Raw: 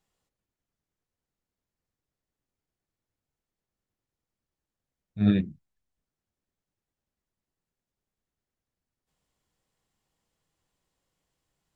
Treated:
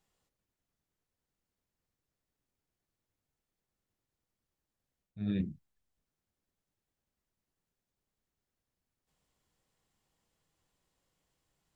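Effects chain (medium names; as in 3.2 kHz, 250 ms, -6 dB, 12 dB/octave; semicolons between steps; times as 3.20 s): dynamic bell 1.1 kHz, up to -5 dB, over -46 dBFS, Q 0.94; reverse; compression 16:1, threshold -29 dBFS, peak gain reduction 14 dB; reverse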